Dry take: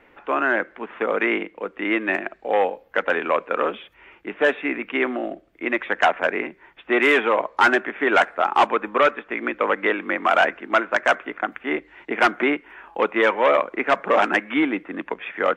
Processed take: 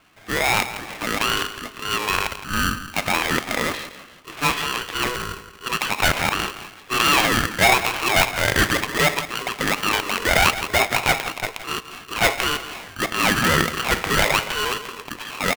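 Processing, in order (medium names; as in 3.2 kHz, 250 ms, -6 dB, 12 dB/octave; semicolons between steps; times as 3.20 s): dynamic bell 2 kHz, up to +4 dB, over -31 dBFS, Q 0.78; transient shaper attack -3 dB, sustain +10 dB; band-pass filter 1.3 kHz, Q 0.54; feedback delay 168 ms, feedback 38%, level -13 dB; polarity switched at an audio rate 740 Hz; trim -1 dB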